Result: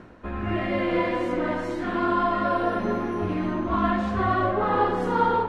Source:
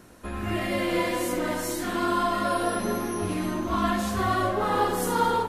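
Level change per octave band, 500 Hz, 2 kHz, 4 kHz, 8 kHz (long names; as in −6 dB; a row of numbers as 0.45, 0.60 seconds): +2.0 dB, +0.5 dB, −6.0 dB, below −20 dB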